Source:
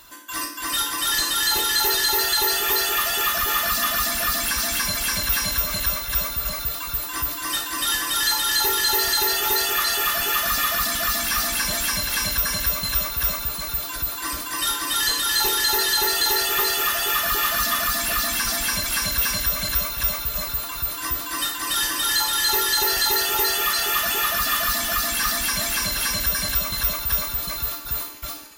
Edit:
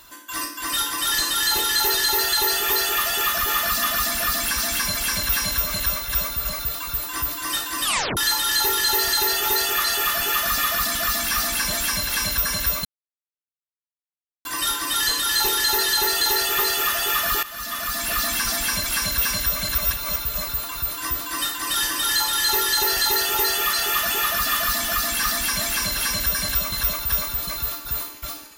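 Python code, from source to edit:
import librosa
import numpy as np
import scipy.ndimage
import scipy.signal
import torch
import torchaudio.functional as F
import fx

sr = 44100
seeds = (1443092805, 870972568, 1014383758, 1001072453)

y = fx.edit(x, sr, fx.tape_stop(start_s=7.84, length_s=0.33),
    fx.silence(start_s=12.85, length_s=1.6),
    fx.fade_in_from(start_s=17.43, length_s=0.79, floor_db=-17.5),
    fx.reverse_span(start_s=19.78, length_s=0.38), tone=tone)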